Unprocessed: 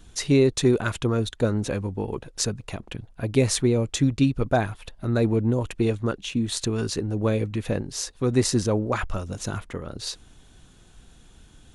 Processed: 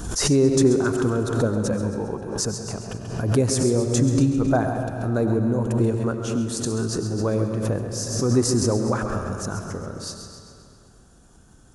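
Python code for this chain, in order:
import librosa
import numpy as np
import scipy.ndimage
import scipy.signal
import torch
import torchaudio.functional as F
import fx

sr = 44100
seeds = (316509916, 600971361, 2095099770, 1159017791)

p1 = fx.highpass(x, sr, hz=53.0, slope=6)
p2 = fx.band_shelf(p1, sr, hz=2800.0, db=-12.0, octaves=1.3)
p3 = p2 + fx.echo_feedback(p2, sr, ms=134, feedback_pct=52, wet_db=-9.5, dry=0)
p4 = fx.rev_freeverb(p3, sr, rt60_s=2.6, hf_ratio=0.75, predelay_ms=55, drr_db=6.5)
y = fx.pre_swell(p4, sr, db_per_s=54.0)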